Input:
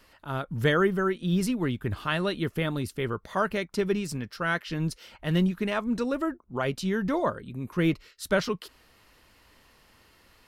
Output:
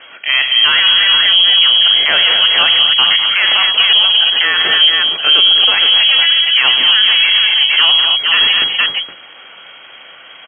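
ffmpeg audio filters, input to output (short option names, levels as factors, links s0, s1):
-af "aeval=exprs='clip(val(0),-1,0.0178)':c=same,aecho=1:1:44|79|102|199|243|466:0.224|0.106|0.211|0.237|0.282|0.376,lowpass=f=2800:t=q:w=0.5098,lowpass=f=2800:t=q:w=0.6013,lowpass=f=2800:t=q:w=0.9,lowpass=f=2800:t=q:w=2.563,afreqshift=-3300,lowshelf=f=120:g=-9,bandreject=f=50:t=h:w=6,bandreject=f=100:t=h:w=6,bandreject=f=150:t=h:w=6,bandreject=f=200:t=h:w=6,alimiter=level_in=14.1:limit=0.891:release=50:level=0:latency=1,volume=0.891"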